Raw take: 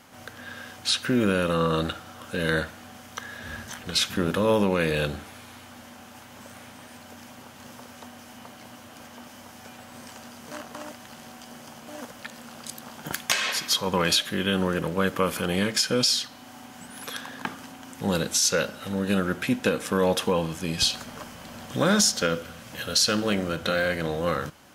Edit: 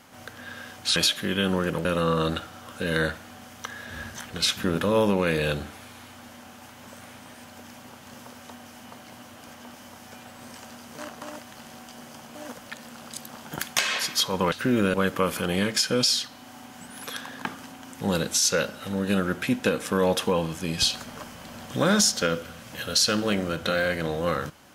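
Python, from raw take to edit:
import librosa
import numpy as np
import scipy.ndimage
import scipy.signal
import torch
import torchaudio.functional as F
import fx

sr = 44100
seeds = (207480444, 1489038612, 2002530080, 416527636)

y = fx.edit(x, sr, fx.swap(start_s=0.96, length_s=0.42, other_s=14.05, other_length_s=0.89), tone=tone)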